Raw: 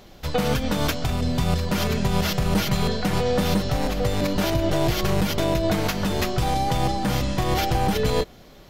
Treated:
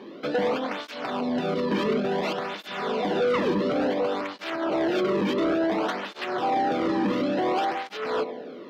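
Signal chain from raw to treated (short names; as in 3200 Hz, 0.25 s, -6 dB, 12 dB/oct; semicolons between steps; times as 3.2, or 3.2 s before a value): on a send: darkening echo 98 ms, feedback 63%, low-pass 2700 Hz, level -19.5 dB; on the sum: limiter -16.5 dBFS, peak gain reduction 6.5 dB; ladder high-pass 220 Hz, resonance 40%; air absorption 320 m; painted sound fall, 3.29–3.52, 300–1900 Hz -35 dBFS; high shelf 8600 Hz +3.5 dB; in parallel at -6 dB: soft clip -39.5 dBFS, distortion -8 dB; on the sum: spectral repair 2.51–3.39, 1300–6400 Hz after; sine folder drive 10 dB, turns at -18.5 dBFS; tape flanging out of phase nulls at 0.57 Hz, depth 1.5 ms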